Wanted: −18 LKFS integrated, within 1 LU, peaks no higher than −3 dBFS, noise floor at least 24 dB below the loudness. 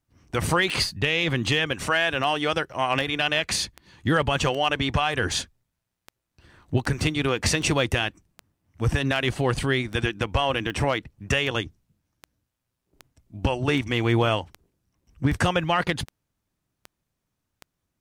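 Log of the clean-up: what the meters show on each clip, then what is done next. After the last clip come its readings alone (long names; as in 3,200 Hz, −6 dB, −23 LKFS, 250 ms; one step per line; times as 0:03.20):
number of clicks 23; integrated loudness −24.5 LKFS; sample peak −10.5 dBFS; target loudness −18.0 LKFS
→ click removal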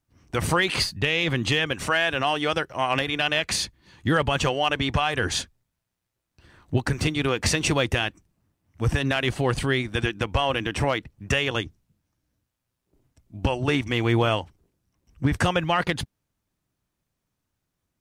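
number of clicks 0; integrated loudness −24.5 LKFS; sample peak −10.5 dBFS; target loudness −18.0 LKFS
→ level +6.5 dB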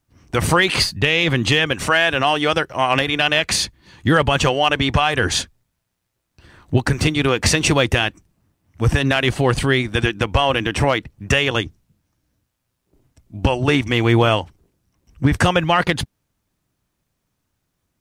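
integrated loudness −18.0 LKFS; sample peak −4.0 dBFS; background noise floor −75 dBFS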